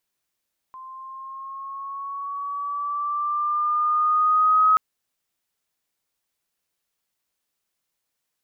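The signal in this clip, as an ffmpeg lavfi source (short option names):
-f lavfi -i "aevalsrc='pow(10,(-13+24*(t/4.03-1))/20)*sin(2*PI*1040*4.03/(3.5*log(2)/12)*(exp(3.5*log(2)/12*t/4.03)-1))':d=4.03:s=44100"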